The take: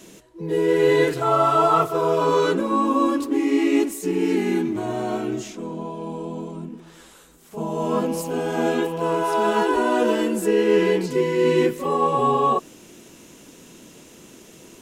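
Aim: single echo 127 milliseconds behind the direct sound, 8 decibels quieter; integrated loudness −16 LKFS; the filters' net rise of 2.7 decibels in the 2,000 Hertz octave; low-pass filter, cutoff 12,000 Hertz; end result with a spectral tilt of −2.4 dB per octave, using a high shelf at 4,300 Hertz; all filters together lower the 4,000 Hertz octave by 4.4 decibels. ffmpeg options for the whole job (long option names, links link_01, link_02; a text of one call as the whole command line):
ffmpeg -i in.wav -af "lowpass=12000,equalizer=frequency=2000:width_type=o:gain=6,equalizer=frequency=4000:width_type=o:gain=-5.5,highshelf=frequency=4300:gain=-8,aecho=1:1:127:0.398,volume=4dB" out.wav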